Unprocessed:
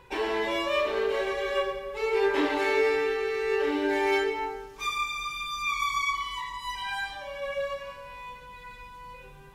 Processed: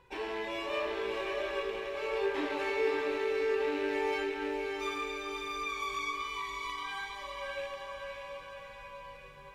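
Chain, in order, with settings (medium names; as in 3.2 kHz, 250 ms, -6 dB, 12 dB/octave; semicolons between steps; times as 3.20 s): rattle on loud lows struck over -44 dBFS, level -27 dBFS; treble shelf 9 kHz -4 dB; echo that smears into a reverb 568 ms, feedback 54%, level -3.5 dB; trim -8.5 dB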